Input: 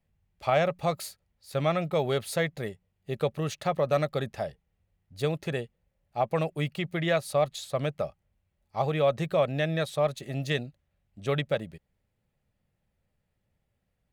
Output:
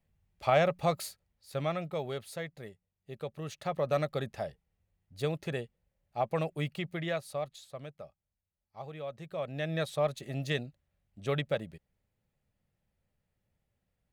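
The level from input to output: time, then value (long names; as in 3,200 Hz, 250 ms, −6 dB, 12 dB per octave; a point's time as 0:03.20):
0:00.96 −1 dB
0:02.38 −11.5 dB
0:03.25 −11.5 dB
0:03.88 −4 dB
0:06.75 −4 dB
0:07.93 −16 dB
0:09.19 −16 dB
0:09.79 −3.5 dB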